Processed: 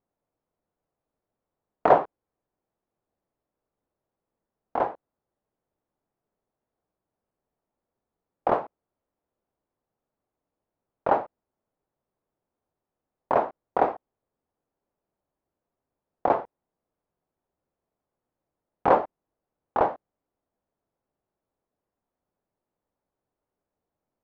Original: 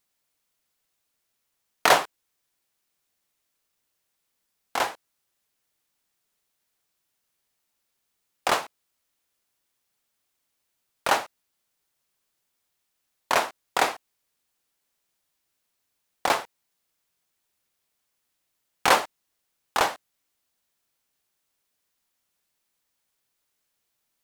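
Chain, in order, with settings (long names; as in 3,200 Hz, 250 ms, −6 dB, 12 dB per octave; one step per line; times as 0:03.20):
Chebyshev low-pass filter 660 Hz, order 2
level +5 dB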